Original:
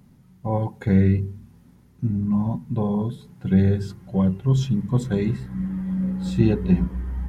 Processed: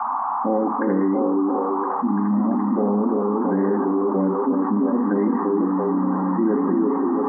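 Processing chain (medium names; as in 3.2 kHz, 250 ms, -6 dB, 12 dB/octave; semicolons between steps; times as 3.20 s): local Wiener filter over 9 samples; expander -44 dBFS; peaking EQ 280 Hz +14 dB 0.23 oct; peak limiter -11.5 dBFS, peak gain reduction 7 dB; brick-wall FIR band-pass 200–2100 Hz; comb of notches 1 kHz; repeats whose band climbs or falls 339 ms, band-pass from 340 Hz, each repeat 0.7 oct, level -1 dB; band noise 760–1200 Hz -40 dBFS; level flattener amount 70%; trim +2 dB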